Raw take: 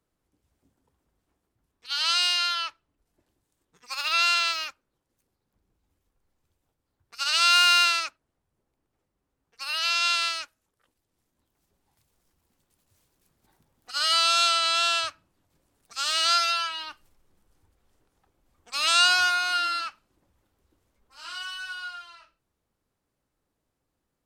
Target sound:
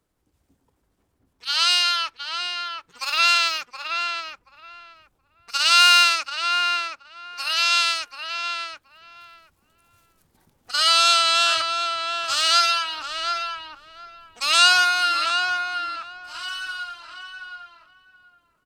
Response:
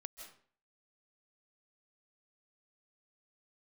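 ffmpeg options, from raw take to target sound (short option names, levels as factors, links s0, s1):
-filter_complex "[0:a]asplit=2[s0][s1];[s1]adelay=943,lowpass=f=2000:p=1,volume=0.631,asplit=2[s2][s3];[s3]adelay=943,lowpass=f=2000:p=1,volume=0.19,asplit=2[s4][s5];[s5]adelay=943,lowpass=f=2000:p=1,volume=0.19[s6];[s0][s2][s4][s6]amix=inputs=4:normalize=0,atempo=1.3,volume=1.78"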